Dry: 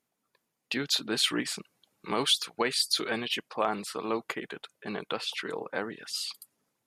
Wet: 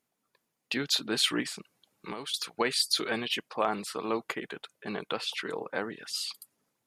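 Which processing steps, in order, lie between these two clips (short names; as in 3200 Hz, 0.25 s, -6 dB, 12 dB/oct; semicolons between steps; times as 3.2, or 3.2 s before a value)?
1.45–2.34 compressor 10:1, threshold -35 dBFS, peak gain reduction 15.5 dB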